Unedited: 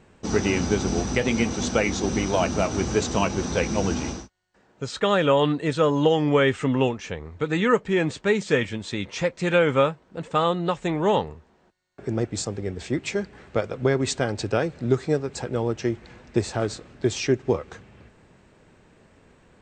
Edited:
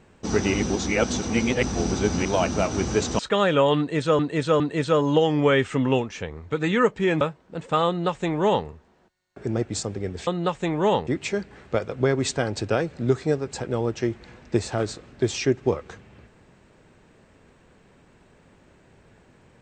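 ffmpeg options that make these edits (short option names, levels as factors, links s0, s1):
-filter_complex "[0:a]asplit=9[s0][s1][s2][s3][s4][s5][s6][s7][s8];[s0]atrim=end=0.542[s9];[s1]atrim=start=0.538:end=2.252,asetpts=PTS-STARTPTS,areverse[s10];[s2]atrim=start=2.248:end=3.192[s11];[s3]atrim=start=4.898:end=5.902[s12];[s4]atrim=start=5.488:end=5.902[s13];[s5]atrim=start=5.488:end=8.102[s14];[s6]atrim=start=9.828:end=12.892[s15];[s7]atrim=start=10.488:end=11.292[s16];[s8]atrim=start=12.888[s17];[s9][s10]acrossfade=d=0.004:c1=hsin:c2=hsin[s18];[s18][s11]acrossfade=d=0.004:c1=hsin:c2=hsin[s19];[s19][s12]acrossfade=d=0.004:c1=hsin:c2=hsin[s20];[s20][s13]acrossfade=d=0.004:c1=hsin:c2=hsin[s21];[s21][s14]acrossfade=d=0.004:c1=hsin:c2=hsin[s22];[s22][s15]acrossfade=d=0.004:c1=hsin:c2=hsin[s23];[s23][s16]acrossfade=d=0.004:c1=hsin:c2=hsin[s24];[s24][s17]acrossfade=d=0.004:c1=hsin:c2=hsin"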